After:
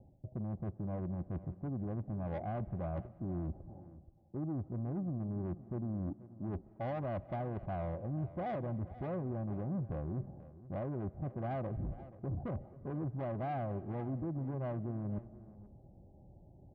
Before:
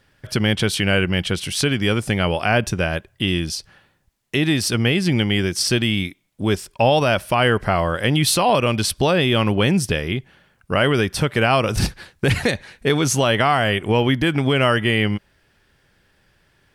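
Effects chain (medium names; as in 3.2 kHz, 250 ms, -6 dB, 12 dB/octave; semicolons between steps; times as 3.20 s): steep low-pass 870 Hz 96 dB/octave; bass shelf 270 Hz +6.5 dB; reverse; compression 8:1, threshold -32 dBFS, peak gain reduction 21 dB; reverse; saturation -34.5 dBFS, distortion -10 dB; comb of notches 450 Hz; delay 482 ms -17 dB; reverberation RT60 1.8 s, pre-delay 110 ms, DRR 20 dB; trim +1.5 dB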